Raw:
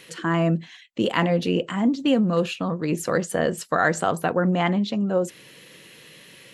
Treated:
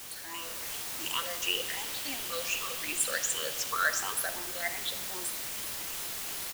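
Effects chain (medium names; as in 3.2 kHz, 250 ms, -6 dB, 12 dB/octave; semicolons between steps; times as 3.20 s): drifting ripple filter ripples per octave 0.68, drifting +2.7 Hz, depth 24 dB; high-pass 290 Hz 24 dB/octave; differentiator; feedback delay 62 ms, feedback 54%, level -23 dB; word length cut 6-bit, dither triangular; reverberation, pre-delay 10 ms, DRR 10 dB; level rider gain up to 6.5 dB; 1.42–3.72 s: peaking EQ 3 kHz +6 dB 0.47 oct; trim -8.5 dB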